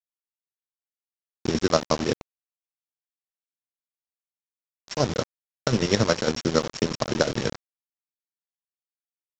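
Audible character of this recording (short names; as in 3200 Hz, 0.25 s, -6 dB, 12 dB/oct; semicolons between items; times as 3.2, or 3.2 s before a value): a buzz of ramps at a fixed pitch in blocks of 8 samples; chopped level 11 Hz, depth 60%, duty 45%; a quantiser's noise floor 6-bit, dither none; µ-law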